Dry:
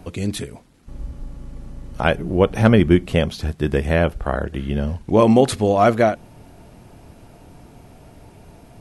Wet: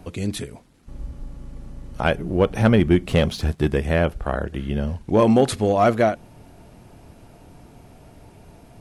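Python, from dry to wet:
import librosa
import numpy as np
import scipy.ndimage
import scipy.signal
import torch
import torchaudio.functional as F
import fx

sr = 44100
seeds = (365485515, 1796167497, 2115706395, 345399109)

p1 = np.clip(x, -10.0 ** (-9.5 / 20.0), 10.0 ** (-9.5 / 20.0))
p2 = x + F.gain(torch.from_numpy(p1), -6.0).numpy()
p3 = fx.leveller(p2, sr, passes=1, at=(3.07, 3.68))
y = F.gain(torch.from_numpy(p3), -5.5).numpy()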